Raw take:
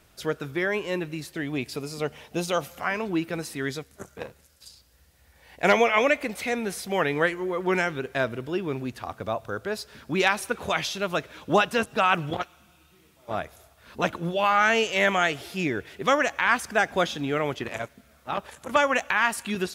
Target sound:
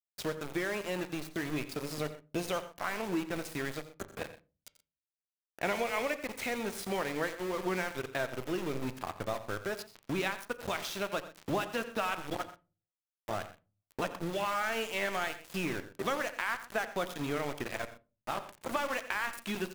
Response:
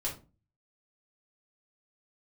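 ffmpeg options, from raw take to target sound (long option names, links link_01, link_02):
-filter_complex "[0:a]acompressor=threshold=-35dB:ratio=3,aeval=exprs='val(0)*gte(abs(val(0)),0.0133)':channel_layout=same,aecho=1:1:87|125:0.188|0.126,asplit=2[link_01][link_02];[1:a]atrim=start_sample=2205,lowpass=3200[link_03];[link_02][link_03]afir=irnorm=-1:irlink=0,volume=-13.5dB[link_04];[link_01][link_04]amix=inputs=2:normalize=0"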